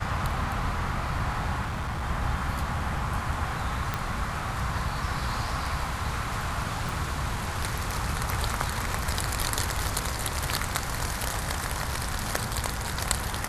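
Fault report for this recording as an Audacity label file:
1.610000	2.040000	clipping −27.5 dBFS
3.940000	3.940000	click −13 dBFS
6.890000	6.890000	click

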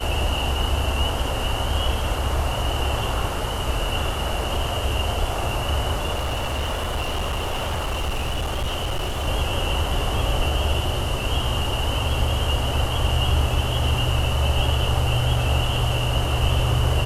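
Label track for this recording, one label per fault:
6.130000	9.280000	clipping −21 dBFS

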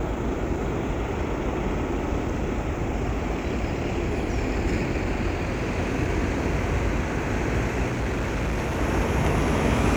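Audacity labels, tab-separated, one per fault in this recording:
7.860000	8.800000	clipping −22.5 dBFS

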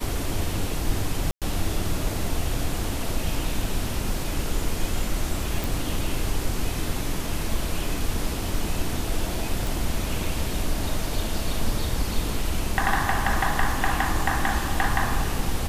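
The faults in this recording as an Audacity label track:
1.310000	1.420000	drop-out 107 ms
5.640000	5.640000	click
9.670000	9.670000	click

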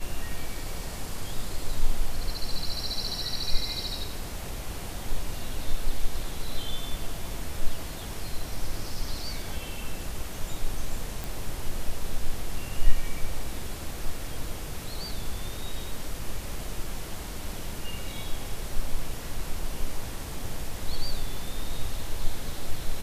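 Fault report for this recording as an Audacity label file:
11.240000	11.240000	click

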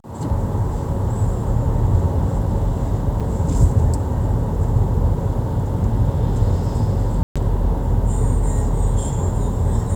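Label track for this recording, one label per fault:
3.200000	3.210000	drop-out 5.5 ms
7.230000	7.360000	drop-out 126 ms

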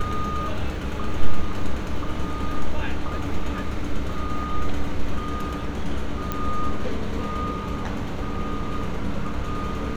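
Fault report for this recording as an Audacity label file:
6.320000	6.320000	click −12 dBFS

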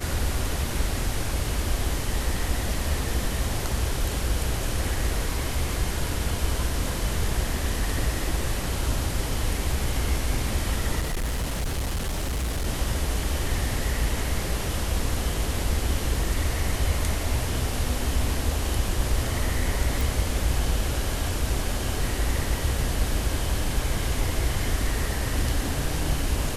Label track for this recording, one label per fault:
11.010000	12.670000	clipping −23.5 dBFS
20.010000	20.010000	click

